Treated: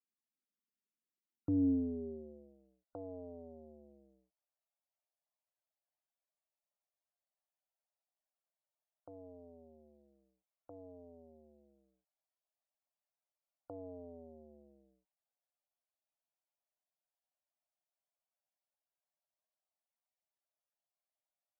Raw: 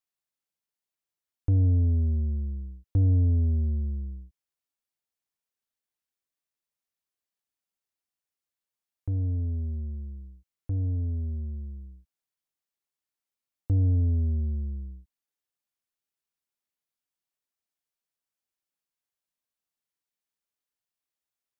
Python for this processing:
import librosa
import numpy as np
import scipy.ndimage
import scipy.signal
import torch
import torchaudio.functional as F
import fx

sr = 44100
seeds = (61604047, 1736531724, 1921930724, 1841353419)

y = fx.filter_sweep_highpass(x, sr, from_hz=220.0, to_hz=630.0, start_s=1.45, end_s=2.57, q=3.1)
y = fx.spec_topn(y, sr, count=64)
y = y * 10.0 ** (-4.5 / 20.0)